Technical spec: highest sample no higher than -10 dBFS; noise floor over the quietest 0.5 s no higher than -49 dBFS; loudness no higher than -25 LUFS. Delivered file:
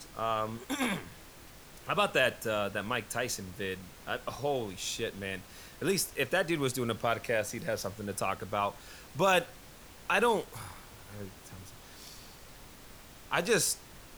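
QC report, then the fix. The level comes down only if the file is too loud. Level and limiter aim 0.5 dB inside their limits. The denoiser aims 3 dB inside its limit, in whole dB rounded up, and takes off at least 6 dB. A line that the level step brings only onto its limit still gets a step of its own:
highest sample -12.0 dBFS: pass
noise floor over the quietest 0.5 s -52 dBFS: pass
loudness -32.0 LUFS: pass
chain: none needed

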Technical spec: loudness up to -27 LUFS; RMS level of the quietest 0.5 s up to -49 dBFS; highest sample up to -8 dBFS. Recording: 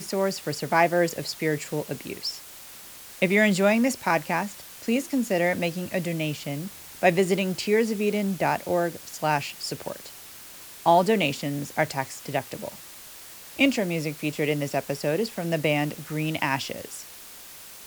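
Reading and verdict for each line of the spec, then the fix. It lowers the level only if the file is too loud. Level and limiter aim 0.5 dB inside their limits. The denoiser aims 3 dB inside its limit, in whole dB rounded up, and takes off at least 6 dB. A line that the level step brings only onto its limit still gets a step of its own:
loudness -25.5 LUFS: fail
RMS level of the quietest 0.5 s -44 dBFS: fail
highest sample -5.5 dBFS: fail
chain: noise reduction 6 dB, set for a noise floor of -44 dBFS; trim -2 dB; peak limiter -8.5 dBFS

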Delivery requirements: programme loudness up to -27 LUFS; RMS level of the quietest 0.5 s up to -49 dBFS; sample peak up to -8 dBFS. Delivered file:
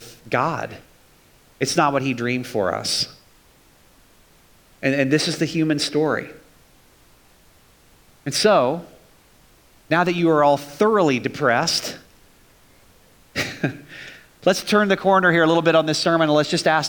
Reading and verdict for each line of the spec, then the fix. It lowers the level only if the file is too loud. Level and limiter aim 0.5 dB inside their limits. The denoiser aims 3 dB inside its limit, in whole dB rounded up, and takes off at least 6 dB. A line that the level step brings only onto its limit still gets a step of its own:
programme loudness -19.5 LUFS: fail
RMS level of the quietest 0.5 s -54 dBFS: pass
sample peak -4.5 dBFS: fail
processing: trim -8 dB

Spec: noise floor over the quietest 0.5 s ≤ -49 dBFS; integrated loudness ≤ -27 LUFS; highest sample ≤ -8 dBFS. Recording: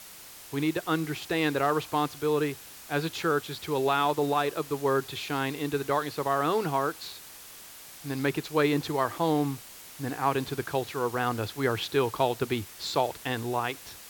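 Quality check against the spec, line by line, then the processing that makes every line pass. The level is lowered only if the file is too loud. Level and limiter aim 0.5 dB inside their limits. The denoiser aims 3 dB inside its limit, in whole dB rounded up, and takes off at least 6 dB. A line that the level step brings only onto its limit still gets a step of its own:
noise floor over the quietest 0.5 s -47 dBFS: fail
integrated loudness -29.0 LUFS: pass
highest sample -11.0 dBFS: pass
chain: noise reduction 6 dB, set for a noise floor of -47 dBFS

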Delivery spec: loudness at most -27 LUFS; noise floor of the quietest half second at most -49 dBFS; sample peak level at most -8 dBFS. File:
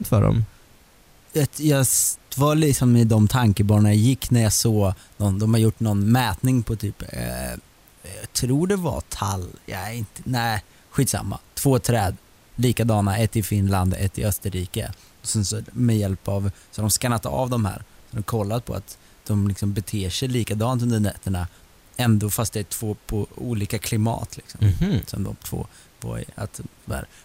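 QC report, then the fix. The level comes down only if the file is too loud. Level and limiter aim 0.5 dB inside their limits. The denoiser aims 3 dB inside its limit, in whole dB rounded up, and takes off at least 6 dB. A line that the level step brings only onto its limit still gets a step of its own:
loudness -22.5 LUFS: fail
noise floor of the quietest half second -53 dBFS: pass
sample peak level -5.5 dBFS: fail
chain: trim -5 dB

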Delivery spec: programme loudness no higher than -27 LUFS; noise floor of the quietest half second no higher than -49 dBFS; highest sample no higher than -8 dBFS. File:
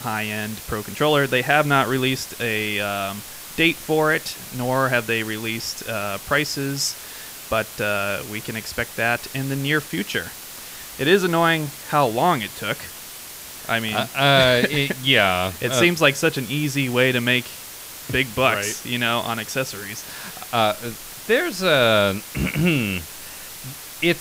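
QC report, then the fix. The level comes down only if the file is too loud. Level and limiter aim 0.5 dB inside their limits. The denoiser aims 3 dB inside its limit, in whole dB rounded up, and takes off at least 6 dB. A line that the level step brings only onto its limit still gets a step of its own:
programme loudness -21.0 LUFS: fail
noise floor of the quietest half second -37 dBFS: fail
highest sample -3.0 dBFS: fail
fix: noise reduction 9 dB, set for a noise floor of -37 dBFS; trim -6.5 dB

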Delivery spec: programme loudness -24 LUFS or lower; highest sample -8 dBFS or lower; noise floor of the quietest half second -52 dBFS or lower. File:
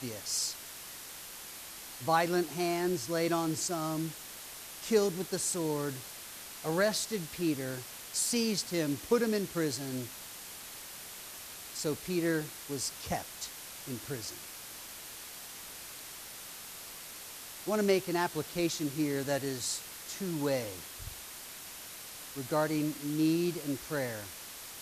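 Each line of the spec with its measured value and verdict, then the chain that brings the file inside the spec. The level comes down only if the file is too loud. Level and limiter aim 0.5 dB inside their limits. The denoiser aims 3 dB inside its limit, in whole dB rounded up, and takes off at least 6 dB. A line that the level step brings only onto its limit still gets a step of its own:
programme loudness -34.5 LUFS: pass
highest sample -15.0 dBFS: pass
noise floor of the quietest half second -46 dBFS: fail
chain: noise reduction 9 dB, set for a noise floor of -46 dBFS

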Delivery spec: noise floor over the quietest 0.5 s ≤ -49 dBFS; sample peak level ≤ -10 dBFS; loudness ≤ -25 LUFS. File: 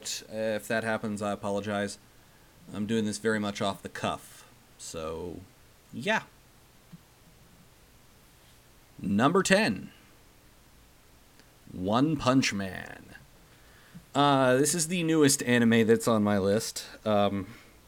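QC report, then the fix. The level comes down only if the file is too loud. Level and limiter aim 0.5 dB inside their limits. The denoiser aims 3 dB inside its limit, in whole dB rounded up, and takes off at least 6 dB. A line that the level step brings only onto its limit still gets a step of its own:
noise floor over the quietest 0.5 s -57 dBFS: pass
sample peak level -9.0 dBFS: fail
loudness -27.5 LUFS: pass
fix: peak limiter -10.5 dBFS

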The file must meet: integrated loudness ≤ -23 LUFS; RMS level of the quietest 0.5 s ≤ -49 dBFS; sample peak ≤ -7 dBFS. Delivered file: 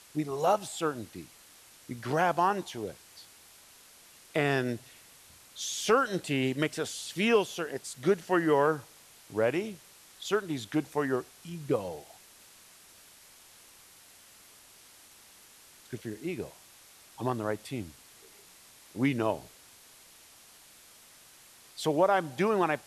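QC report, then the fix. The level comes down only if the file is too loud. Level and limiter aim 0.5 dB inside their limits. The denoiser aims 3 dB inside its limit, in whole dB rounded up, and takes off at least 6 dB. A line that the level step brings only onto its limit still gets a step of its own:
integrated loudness -30.5 LUFS: pass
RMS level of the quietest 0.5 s -56 dBFS: pass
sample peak -12.5 dBFS: pass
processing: none needed

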